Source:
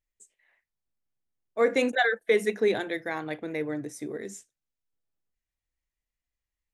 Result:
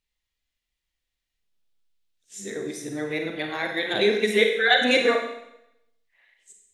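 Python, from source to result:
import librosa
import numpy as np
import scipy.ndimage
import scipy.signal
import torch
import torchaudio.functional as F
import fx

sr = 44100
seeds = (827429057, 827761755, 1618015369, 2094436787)

y = np.flip(x).copy()
y = fx.peak_eq(y, sr, hz=3500.0, db=10.5, octaves=1.2)
y = fx.rev_schroeder(y, sr, rt60_s=0.82, comb_ms=33, drr_db=3.0)
y = F.gain(torch.from_numpy(y), 1.5).numpy()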